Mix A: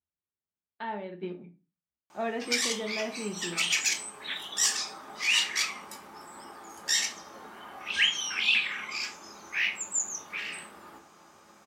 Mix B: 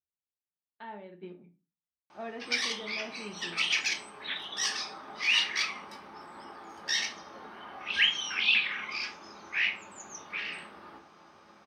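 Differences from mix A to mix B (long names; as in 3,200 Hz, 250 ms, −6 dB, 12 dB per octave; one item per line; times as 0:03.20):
speech −8.0 dB
master: add Savitzky-Golay smoothing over 15 samples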